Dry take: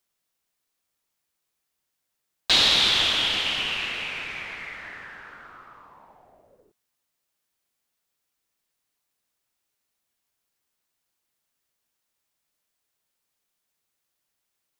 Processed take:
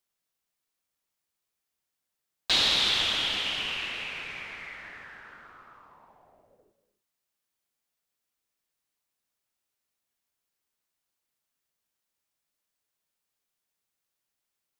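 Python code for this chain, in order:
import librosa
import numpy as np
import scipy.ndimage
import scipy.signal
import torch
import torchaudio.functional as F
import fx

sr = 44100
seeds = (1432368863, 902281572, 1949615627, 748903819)

y = fx.rev_gated(x, sr, seeds[0], gate_ms=310, shape='rising', drr_db=12.0)
y = y * librosa.db_to_amplitude(-5.0)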